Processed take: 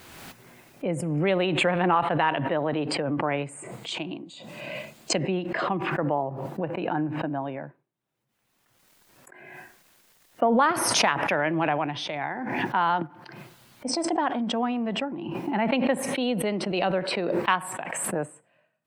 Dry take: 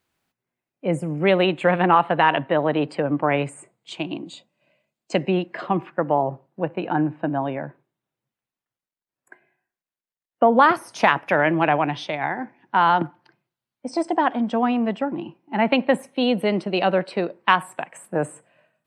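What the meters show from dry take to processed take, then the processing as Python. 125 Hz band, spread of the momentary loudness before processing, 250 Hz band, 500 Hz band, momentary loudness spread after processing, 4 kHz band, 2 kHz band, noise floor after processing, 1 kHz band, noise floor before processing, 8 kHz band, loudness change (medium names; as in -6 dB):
-3.0 dB, 12 LU, -4.0 dB, -5.0 dB, 16 LU, +0.5 dB, -4.5 dB, -71 dBFS, -5.5 dB, under -85 dBFS, no reading, -4.5 dB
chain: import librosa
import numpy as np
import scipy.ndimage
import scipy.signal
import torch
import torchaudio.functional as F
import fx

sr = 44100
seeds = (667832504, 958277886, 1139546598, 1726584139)

y = fx.pre_swell(x, sr, db_per_s=28.0)
y = y * 10.0 ** (-6.5 / 20.0)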